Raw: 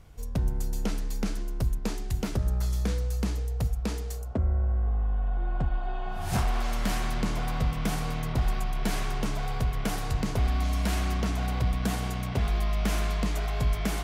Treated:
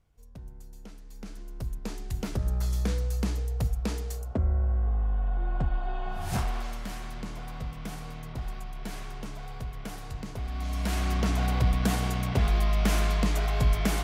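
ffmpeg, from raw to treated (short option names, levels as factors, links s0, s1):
-af "volume=3.76,afade=t=in:st=1.04:d=0.52:silence=0.354813,afade=t=in:st=1.56:d=1.19:silence=0.398107,afade=t=out:st=6.1:d=0.76:silence=0.354813,afade=t=in:st=10.47:d=0.88:silence=0.266073"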